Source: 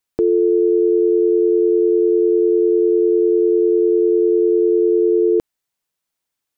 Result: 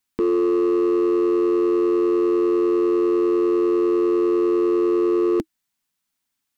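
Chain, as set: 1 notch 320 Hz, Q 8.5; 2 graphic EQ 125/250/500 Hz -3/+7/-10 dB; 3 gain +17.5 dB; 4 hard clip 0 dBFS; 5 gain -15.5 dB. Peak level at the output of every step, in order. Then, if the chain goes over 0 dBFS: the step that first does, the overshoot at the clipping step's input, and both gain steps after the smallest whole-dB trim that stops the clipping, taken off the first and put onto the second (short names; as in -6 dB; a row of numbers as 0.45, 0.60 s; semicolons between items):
-9.0, -11.5, +6.0, 0.0, -15.5 dBFS; step 3, 6.0 dB; step 3 +11.5 dB, step 5 -9.5 dB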